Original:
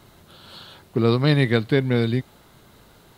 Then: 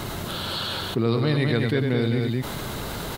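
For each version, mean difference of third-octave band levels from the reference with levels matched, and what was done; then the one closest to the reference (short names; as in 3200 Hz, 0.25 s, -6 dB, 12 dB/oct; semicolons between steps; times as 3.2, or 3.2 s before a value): 13.5 dB: tapped delay 96/211 ms -9/-6.5 dB; fast leveller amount 70%; gain -6.5 dB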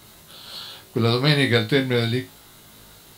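5.5 dB: high shelf 2800 Hz +11.5 dB; flutter echo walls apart 3.2 m, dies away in 0.22 s; gain -1.5 dB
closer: second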